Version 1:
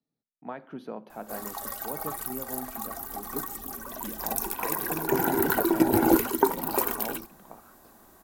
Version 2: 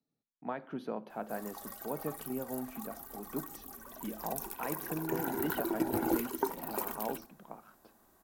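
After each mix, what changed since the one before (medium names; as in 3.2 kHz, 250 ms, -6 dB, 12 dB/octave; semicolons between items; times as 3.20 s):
background -10.5 dB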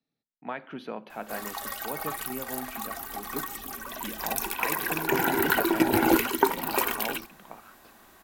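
background +8.5 dB; master: add peaking EQ 2.6 kHz +12 dB 1.8 oct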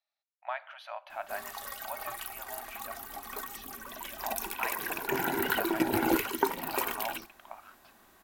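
speech: add brick-wall FIR high-pass 560 Hz; background -5.5 dB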